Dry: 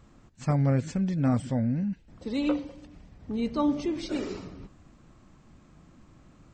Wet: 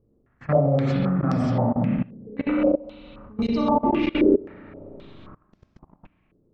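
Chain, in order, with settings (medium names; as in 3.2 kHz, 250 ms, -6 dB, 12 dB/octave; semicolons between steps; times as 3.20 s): spring tank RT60 1.8 s, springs 33/43 ms, chirp 35 ms, DRR -8.5 dB; level held to a coarse grid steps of 22 dB; step-sequenced low-pass 3.8 Hz 420–5300 Hz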